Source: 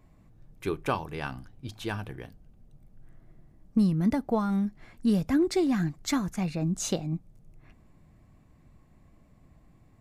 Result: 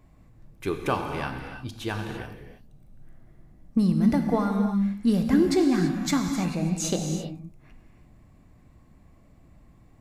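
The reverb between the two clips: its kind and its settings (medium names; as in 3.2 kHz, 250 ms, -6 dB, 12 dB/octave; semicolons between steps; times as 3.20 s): gated-style reverb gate 360 ms flat, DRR 4 dB; trim +2 dB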